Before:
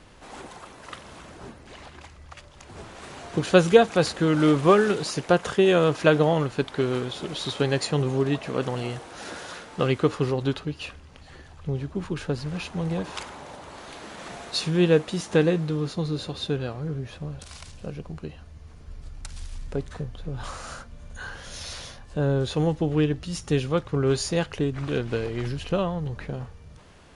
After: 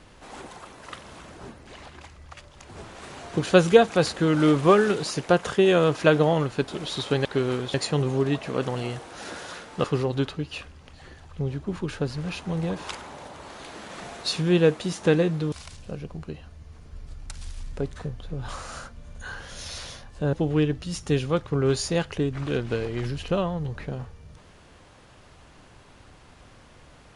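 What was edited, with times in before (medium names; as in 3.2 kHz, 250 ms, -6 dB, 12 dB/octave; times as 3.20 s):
6.68–7.17 s: move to 7.74 s
9.84–10.12 s: delete
15.80–17.47 s: delete
22.28–22.74 s: delete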